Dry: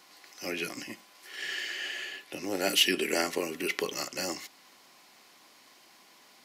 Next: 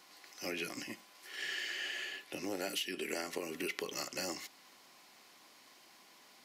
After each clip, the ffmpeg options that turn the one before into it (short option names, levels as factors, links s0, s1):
-af "acompressor=threshold=0.0282:ratio=16,volume=0.708"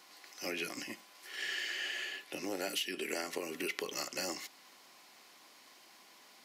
-af "lowshelf=f=130:g=-9,volume=1.19"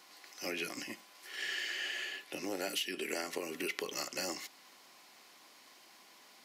-af anull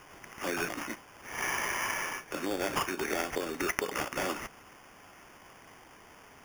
-af "acrusher=samples=11:mix=1:aa=0.000001,volume=1.88"